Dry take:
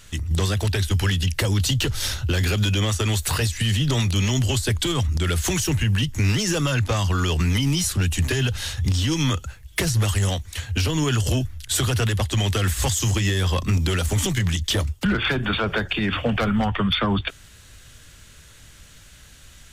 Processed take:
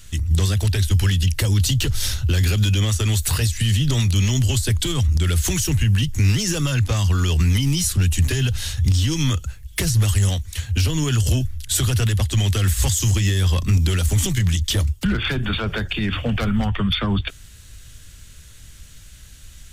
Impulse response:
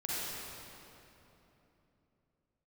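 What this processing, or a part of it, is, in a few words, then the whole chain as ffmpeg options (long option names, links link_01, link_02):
smiley-face EQ: -af "lowshelf=frequency=100:gain=8.5,equalizer=frequency=790:width_type=o:width=2.5:gain=-5,highshelf=frequency=6100:gain=4.5"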